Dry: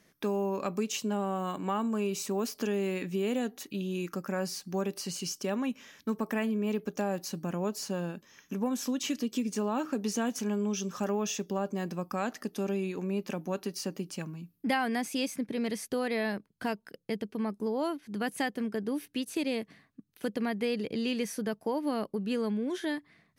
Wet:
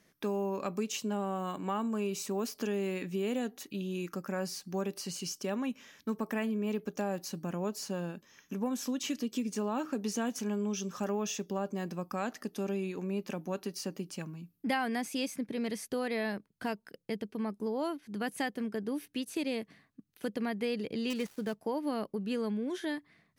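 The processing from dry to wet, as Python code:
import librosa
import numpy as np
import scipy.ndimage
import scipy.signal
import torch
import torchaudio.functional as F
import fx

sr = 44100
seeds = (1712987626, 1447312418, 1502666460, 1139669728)

y = fx.dead_time(x, sr, dead_ms=0.08, at=(21.1, 21.6))
y = y * librosa.db_to_amplitude(-2.5)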